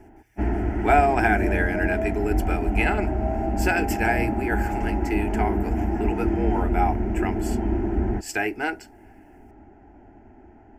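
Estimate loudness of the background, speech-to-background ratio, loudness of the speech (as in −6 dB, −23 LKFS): −26.0 LKFS, −0.5 dB, −26.5 LKFS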